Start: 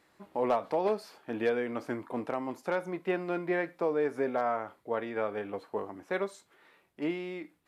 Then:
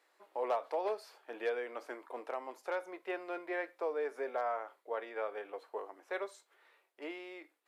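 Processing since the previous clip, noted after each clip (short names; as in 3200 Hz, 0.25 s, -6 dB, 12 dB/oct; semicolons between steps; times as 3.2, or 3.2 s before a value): HPF 410 Hz 24 dB/oct; gain -5 dB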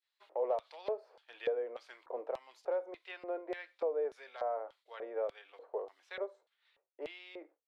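expander -59 dBFS; LFO band-pass square 1.7 Hz 530–3700 Hz; three-band squash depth 40%; gain +5 dB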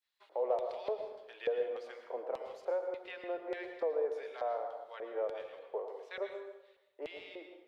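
plate-style reverb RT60 0.95 s, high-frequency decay 0.75×, pre-delay 95 ms, DRR 5.5 dB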